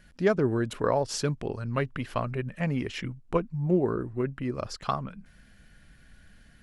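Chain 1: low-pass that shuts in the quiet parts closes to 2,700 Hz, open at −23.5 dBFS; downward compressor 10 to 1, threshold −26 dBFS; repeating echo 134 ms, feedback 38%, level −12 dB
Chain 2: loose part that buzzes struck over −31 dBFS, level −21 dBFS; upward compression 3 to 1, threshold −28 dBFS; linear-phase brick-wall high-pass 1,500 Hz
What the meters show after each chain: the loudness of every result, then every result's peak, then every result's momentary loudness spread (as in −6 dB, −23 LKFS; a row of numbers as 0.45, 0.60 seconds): −33.0, −36.0 LKFS; −15.5, −19.5 dBFS; 5, 15 LU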